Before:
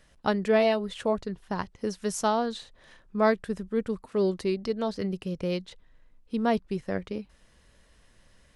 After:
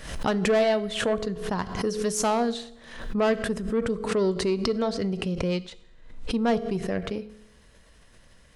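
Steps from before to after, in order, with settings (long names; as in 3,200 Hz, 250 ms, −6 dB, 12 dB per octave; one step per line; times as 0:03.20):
0:03.73–0:06.73: low-pass filter 9,700 Hz 24 dB per octave
soft clipping −21 dBFS, distortion −13 dB
convolution reverb RT60 0.80 s, pre-delay 3 ms, DRR 13 dB
background raised ahead of every attack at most 73 dB per second
level +3.5 dB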